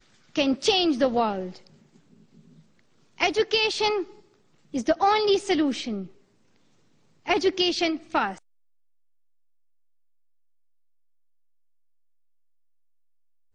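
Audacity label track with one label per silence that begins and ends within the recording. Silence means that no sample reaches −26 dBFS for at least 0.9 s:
1.450000	3.200000	silence
5.980000	7.280000	silence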